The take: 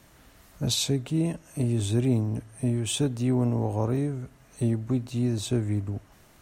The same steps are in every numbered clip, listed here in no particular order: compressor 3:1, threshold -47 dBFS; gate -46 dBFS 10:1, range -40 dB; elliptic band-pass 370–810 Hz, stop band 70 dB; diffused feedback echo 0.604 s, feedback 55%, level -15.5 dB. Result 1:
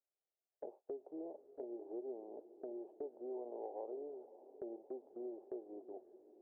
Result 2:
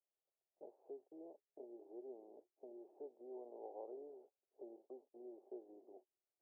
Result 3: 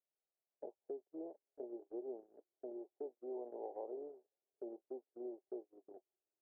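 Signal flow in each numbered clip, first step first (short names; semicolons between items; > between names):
elliptic band-pass > gate > compressor > diffused feedback echo; compressor > diffused feedback echo > gate > elliptic band-pass; elliptic band-pass > compressor > diffused feedback echo > gate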